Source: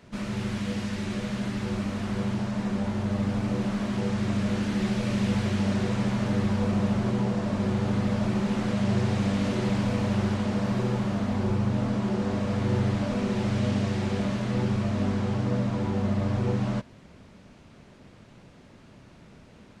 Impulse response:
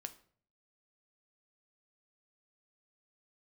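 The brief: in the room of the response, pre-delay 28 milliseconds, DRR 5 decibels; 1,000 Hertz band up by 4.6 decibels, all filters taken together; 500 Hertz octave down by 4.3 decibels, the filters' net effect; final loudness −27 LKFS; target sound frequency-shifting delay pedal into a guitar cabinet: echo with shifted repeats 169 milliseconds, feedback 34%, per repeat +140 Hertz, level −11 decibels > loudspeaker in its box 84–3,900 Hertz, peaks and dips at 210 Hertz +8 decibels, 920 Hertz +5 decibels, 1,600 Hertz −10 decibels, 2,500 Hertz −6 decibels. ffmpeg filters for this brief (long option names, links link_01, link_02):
-filter_complex "[0:a]equalizer=frequency=500:width_type=o:gain=-7.5,equalizer=frequency=1000:width_type=o:gain=5.5,asplit=2[link_01][link_02];[1:a]atrim=start_sample=2205,adelay=28[link_03];[link_02][link_03]afir=irnorm=-1:irlink=0,volume=-1dB[link_04];[link_01][link_04]amix=inputs=2:normalize=0,asplit=5[link_05][link_06][link_07][link_08][link_09];[link_06]adelay=169,afreqshift=140,volume=-11dB[link_10];[link_07]adelay=338,afreqshift=280,volume=-20.4dB[link_11];[link_08]adelay=507,afreqshift=420,volume=-29.7dB[link_12];[link_09]adelay=676,afreqshift=560,volume=-39.1dB[link_13];[link_05][link_10][link_11][link_12][link_13]amix=inputs=5:normalize=0,highpass=84,equalizer=frequency=210:width_type=q:width=4:gain=8,equalizer=frequency=920:width_type=q:width=4:gain=5,equalizer=frequency=1600:width_type=q:width=4:gain=-10,equalizer=frequency=2500:width_type=q:width=4:gain=-6,lowpass=frequency=3900:width=0.5412,lowpass=frequency=3900:width=1.3066,volume=-6dB"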